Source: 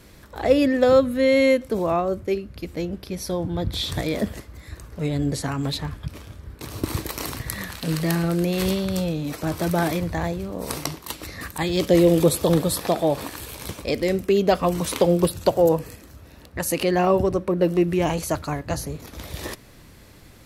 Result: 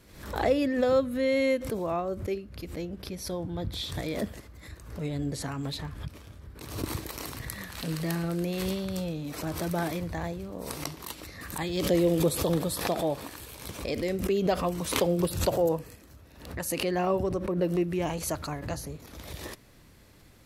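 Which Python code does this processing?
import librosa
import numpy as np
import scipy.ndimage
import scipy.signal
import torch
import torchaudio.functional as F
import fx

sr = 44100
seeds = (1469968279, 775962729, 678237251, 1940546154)

y = fx.pre_swell(x, sr, db_per_s=81.0)
y = y * librosa.db_to_amplitude(-8.0)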